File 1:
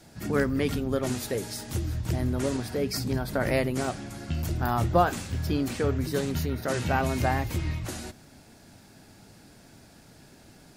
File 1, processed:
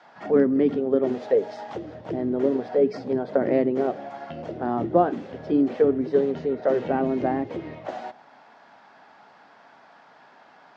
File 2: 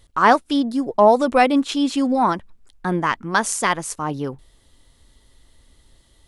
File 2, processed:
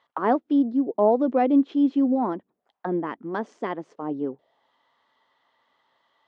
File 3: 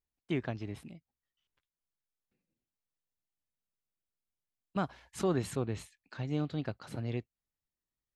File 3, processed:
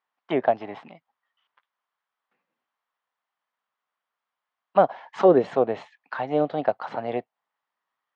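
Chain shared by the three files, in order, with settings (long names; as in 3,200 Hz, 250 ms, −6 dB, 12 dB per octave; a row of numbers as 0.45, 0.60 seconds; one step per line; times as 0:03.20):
parametric band 720 Hz +2.5 dB 0.39 octaves
envelope filter 330–1,100 Hz, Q 2.6, down, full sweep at −22 dBFS
loudspeaker in its box 160–6,100 Hz, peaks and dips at 340 Hz −5 dB, 1,900 Hz +4 dB, 3,200 Hz +5 dB
loudness normalisation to −24 LKFS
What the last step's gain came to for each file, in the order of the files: +13.0, +4.0, +22.0 decibels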